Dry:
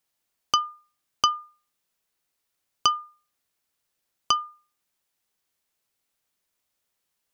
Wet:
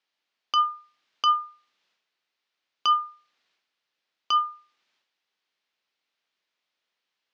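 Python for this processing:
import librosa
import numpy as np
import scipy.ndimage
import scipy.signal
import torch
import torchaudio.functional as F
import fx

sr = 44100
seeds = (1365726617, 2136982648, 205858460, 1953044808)

y = scipy.signal.sosfilt(scipy.signal.butter(2, 230.0, 'highpass', fs=sr, output='sos'), x)
y = fx.peak_eq(y, sr, hz=4100.0, db=11.0, octaves=2.8)
y = fx.transient(y, sr, attack_db=-8, sustain_db=8)
y = fx.air_absorb(y, sr, metres=220.0)
y = F.gain(torch.from_numpy(y), -2.0).numpy()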